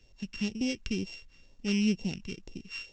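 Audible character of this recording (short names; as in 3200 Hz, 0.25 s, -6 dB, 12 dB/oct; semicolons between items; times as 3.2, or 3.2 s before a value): a buzz of ramps at a fixed pitch in blocks of 16 samples; phasing stages 2, 2.1 Hz, lowest notch 640–1400 Hz; µ-law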